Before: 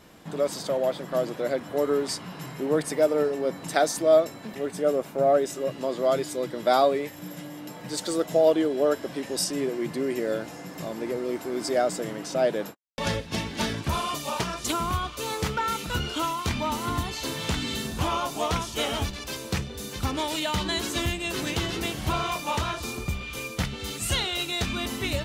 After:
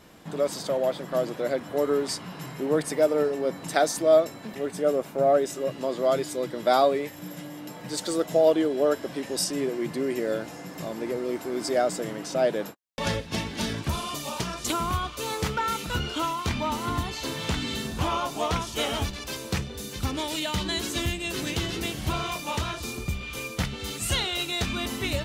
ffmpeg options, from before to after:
-filter_complex "[0:a]asettb=1/sr,asplit=3[s0][s1][s2];[s0]atrim=end=13.444[s3];[s1]atrim=start=13.44:end=14.7,asetpts=PTS-STARTPTS,afade=t=in:d=0.004:c=qsin,afade=t=out:st=1.256:d=0.004:c=qsin,acrossover=split=390|3000[s4][s5][s6];[s5]acompressor=threshold=0.0251:ratio=6:attack=3.2:release=140:knee=2.83:detection=peak[s7];[s4][s7][s6]amix=inputs=3:normalize=0[s8];[s2]atrim=start=14.696[s9];[s3][s8]acrossfade=d=0.004:c1=hsin:c2=qsin[s10];[s10][s9]acrossfade=d=0.004:c1=qsin:c2=hsin,asettb=1/sr,asplit=3[s11][s12][s13];[s11]atrim=end=15.944[s14];[s12]atrim=start=15.94:end=18.67,asetpts=PTS-STARTPTS,afade=t=in:d=0.004:c=qsin,afade=t=out:st=2.726:d=0.004:c=qsin,equalizer=f=13000:t=o:w=1.6:g=-3.5[s15];[s13]atrim=start=18.666[s16];[s14][s15]acrossfade=d=0.004:c1=hsin:c2=qsin[s17];[s17][s16]acrossfade=d=0.004:c1=qsin:c2=hsin,asettb=1/sr,asplit=3[s18][s19][s20];[s18]atrim=end=19.814[s21];[s19]atrim=start=19.81:end=23.23,asetpts=PTS-STARTPTS,afade=t=in:d=0.004:c=qsin,afade=t=out:st=3.416:d=0.004:c=qsin,equalizer=f=960:t=o:w=1.7:g=-4[s22];[s20]atrim=start=23.226[s23];[s21][s22]acrossfade=d=0.004:c1=hsin:c2=qsin[s24];[s24][s23]acrossfade=d=0.004:c1=qsin:c2=hsin"

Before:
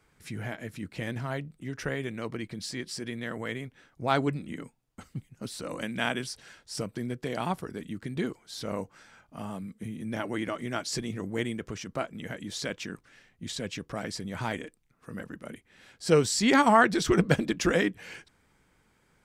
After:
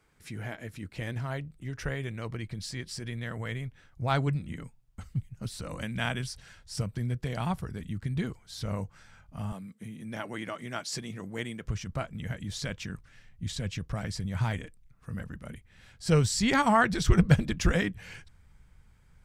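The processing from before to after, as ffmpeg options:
-filter_complex "[0:a]asettb=1/sr,asplit=3[s0][s1][s2];[s0]atrim=end=9.524[s3];[s1]atrim=start=9.52:end=11.65,asetpts=PTS-STARTPTS,afade=t=in:d=0.004:c=qsin,afade=t=out:st=2.126:d=0.004:c=qsin,highpass=240[s4];[s2]atrim=start=11.646[s5];[s3][s4]acrossfade=d=0.004:c1=hsin:c2=qsin[s6];[s6][s5]acrossfade=d=0.004:c1=qsin:c2=hsin,asubboost=boost=10:cutoff=99,volume=0.794"

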